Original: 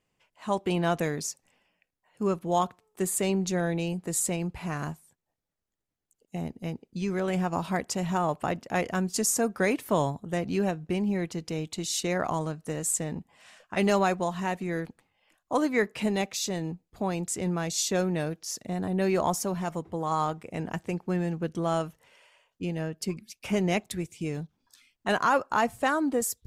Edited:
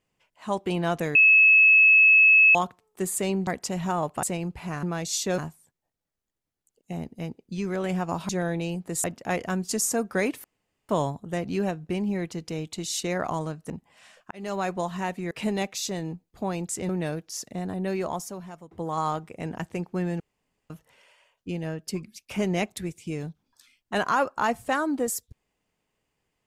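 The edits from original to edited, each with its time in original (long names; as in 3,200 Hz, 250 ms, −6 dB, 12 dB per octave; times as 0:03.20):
0:01.15–0:02.55: beep over 2,590 Hz −12.5 dBFS
0:03.47–0:04.22: swap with 0:07.73–0:08.49
0:09.89: splice in room tone 0.45 s
0:12.70–0:13.13: remove
0:13.74–0:14.23: fade in
0:14.74–0:15.90: remove
0:17.48–0:18.03: move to 0:04.82
0:18.65–0:19.85: fade out, to −15.5 dB
0:21.34–0:21.84: fill with room tone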